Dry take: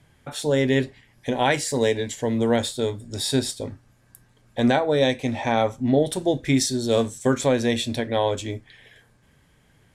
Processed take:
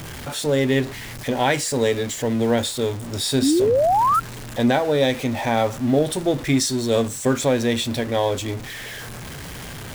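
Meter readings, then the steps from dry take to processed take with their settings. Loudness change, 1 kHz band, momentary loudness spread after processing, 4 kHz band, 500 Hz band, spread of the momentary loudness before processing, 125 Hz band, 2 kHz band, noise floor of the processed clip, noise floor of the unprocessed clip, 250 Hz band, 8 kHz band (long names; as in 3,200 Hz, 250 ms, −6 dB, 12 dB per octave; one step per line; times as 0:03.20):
+2.0 dB, +5.5 dB, 14 LU, +2.5 dB, +2.0 dB, 10 LU, +2.0 dB, +2.0 dB, −35 dBFS, −60 dBFS, +2.0 dB, +3.5 dB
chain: converter with a step at zero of −29 dBFS
sound drawn into the spectrogram rise, 0:03.42–0:04.20, 250–1,400 Hz −17 dBFS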